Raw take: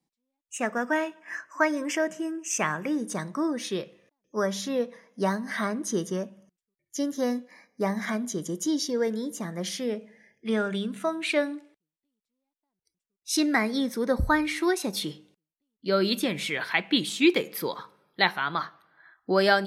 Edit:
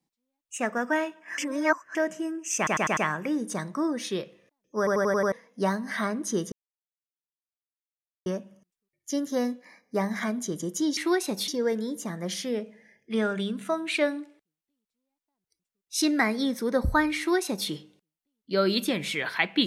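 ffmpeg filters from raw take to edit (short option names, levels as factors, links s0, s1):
-filter_complex "[0:a]asplit=16[s0][s1][s2][s3][s4][s5][s6][s7][s8][s9][s10][s11][s12][s13][s14][s15];[s0]atrim=end=1.382[s16];[s1]atrim=start=1.378:end=1.952,asetpts=PTS-STARTPTS,areverse[s17];[s2]atrim=start=1.948:end=2.672[s18];[s3]atrim=start=2.568:end=2.672[s19];[s4]atrim=start=2.568:end=2.672[s20];[s5]atrim=start=2.568:end=2.672[s21];[s6]atrim=start=2.568:end=4.472[s22];[s7]atrim=start=4.378:end=4.472[s23];[s8]atrim=start=4.378:end=4.472[s24];[s9]atrim=start=4.378:end=4.472[s25];[s10]atrim=start=4.378:end=4.472[s26];[s11]atrim=start=4.378:end=4.472[s27];[s12]atrim=start=4.918:end=6.12,asetpts=PTS-STARTPTS,afade=t=out:st=1.198:d=0.004:c=hsin,apad=pad_dur=1.74[s28];[s13]atrim=start=6.12:end=8.832,asetpts=PTS-STARTPTS,afade=t=in:d=0.004:c=hsin[s29];[s14]atrim=start=14.528:end=15.042[s30];[s15]atrim=start=8.828[s31];[s16][s17]acrossfade=d=0.004:c1=hsin:c2=hsin[s32];[s32][s18]acrossfade=d=0.004:c1=hsin:c2=hsin[s33];[s33][s19]acrossfade=d=0.004:c1=hsin:c2=hsin[s34];[s34][s20]acrossfade=d=0.004:c1=hsin:c2=hsin[s35];[s35][s21]acrossfade=d=0.004:c1=hsin:c2=hsin[s36];[s36][s22]acrossfade=d=0.004:c1=hsin:c2=hsin[s37];[s37][s23]acrossfade=d=0.004:c1=hsin:c2=hsin[s38];[s38][s24]acrossfade=d=0.004:c1=hsin:c2=hsin[s39];[s39][s25]acrossfade=d=0.004:c1=hsin:c2=hsin[s40];[s40][s26]acrossfade=d=0.004:c1=hsin:c2=hsin[s41];[s41][s27]acrossfade=d=0.004:c1=hsin:c2=hsin[s42];[s28][s29]concat=n=2:v=0:a=1[s43];[s42][s43]acrossfade=d=0.004:c1=hsin:c2=hsin[s44];[s44][s30]acrossfade=d=0.004:c1=hsin:c2=hsin[s45];[s45][s31]acrossfade=d=0.004:c1=hsin:c2=hsin"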